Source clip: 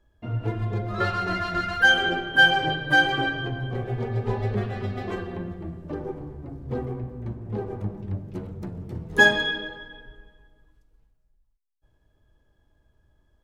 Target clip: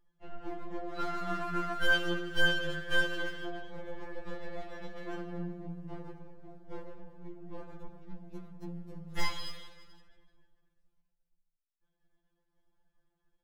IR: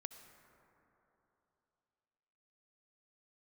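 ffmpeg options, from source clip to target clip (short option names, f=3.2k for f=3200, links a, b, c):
-filter_complex "[0:a]aeval=exprs='if(lt(val(0),0),0.251*val(0),val(0))':c=same,adynamicequalizer=threshold=0.00224:dfrequency=290:dqfactor=6.8:tfrequency=290:tqfactor=6.8:attack=5:release=100:ratio=0.375:range=2:mode=cutabove:tftype=bell[a];[1:a]atrim=start_sample=2205,afade=t=out:st=0.34:d=0.01,atrim=end_sample=15435,atrim=end_sample=3528[b];[a][b]afir=irnorm=-1:irlink=0,afftfilt=real='re*2.83*eq(mod(b,8),0)':imag='im*2.83*eq(mod(b,8),0)':win_size=2048:overlap=0.75"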